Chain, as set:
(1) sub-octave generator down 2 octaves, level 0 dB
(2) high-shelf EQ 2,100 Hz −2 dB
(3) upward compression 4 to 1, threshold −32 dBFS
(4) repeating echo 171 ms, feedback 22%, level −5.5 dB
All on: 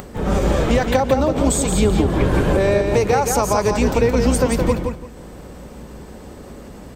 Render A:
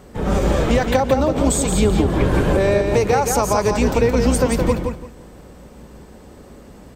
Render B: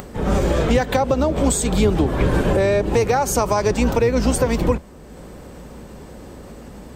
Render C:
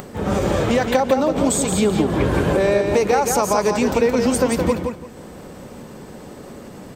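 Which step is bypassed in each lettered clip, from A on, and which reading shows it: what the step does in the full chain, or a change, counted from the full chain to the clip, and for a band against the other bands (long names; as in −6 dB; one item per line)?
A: 3, change in momentary loudness spread −12 LU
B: 4, change in momentary loudness spread −13 LU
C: 1, 125 Hz band −4.5 dB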